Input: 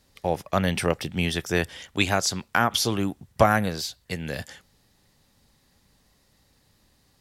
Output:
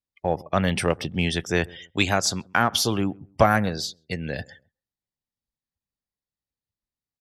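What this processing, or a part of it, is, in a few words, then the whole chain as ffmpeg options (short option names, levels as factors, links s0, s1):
parallel distortion: -filter_complex "[0:a]afftdn=nr=35:nf=-41,asplit=2[s0][s1];[s1]adelay=132,lowpass=f=800:p=1,volume=0.0668,asplit=2[s2][s3];[s3]adelay=132,lowpass=f=800:p=1,volume=0.29[s4];[s0][s2][s4]amix=inputs=3:normalize=0,asplit=2[s5][s6];[s6]asoftclip=type=hard:threshold=0.0891,volume=0.224[s7];[s5][s7]amix=inputs=2:normalize=0"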